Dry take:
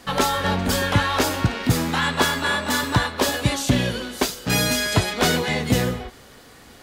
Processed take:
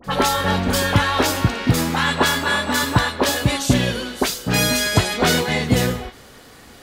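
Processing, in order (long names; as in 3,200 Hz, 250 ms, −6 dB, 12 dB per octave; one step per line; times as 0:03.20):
all-pass dispersion highs, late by 43 ms, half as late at 1,800 Hz
level +2.5 dB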